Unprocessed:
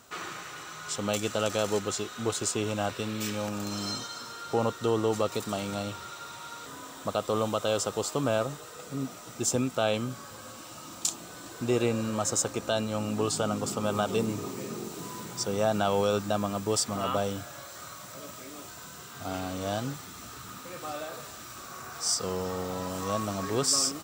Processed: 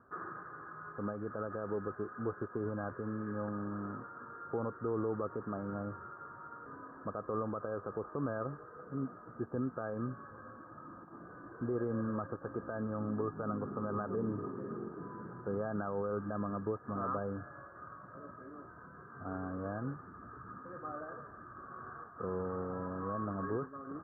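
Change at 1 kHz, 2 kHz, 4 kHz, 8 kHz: −8.0 dB, −9.5 dB, below −40 dB, below −40 dB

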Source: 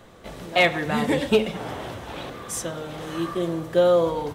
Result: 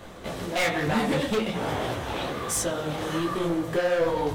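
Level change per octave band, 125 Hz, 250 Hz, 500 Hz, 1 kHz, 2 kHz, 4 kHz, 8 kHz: +0.5, −1.0, −4.0, −1.0, −3.0, −2.5, +3.5 decibels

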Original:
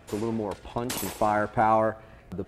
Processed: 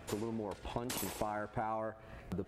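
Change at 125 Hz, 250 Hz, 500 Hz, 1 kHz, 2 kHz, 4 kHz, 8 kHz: −9.0, −10.5, −12.5, −15.0, −12.5, −7.0, −7.0 decibels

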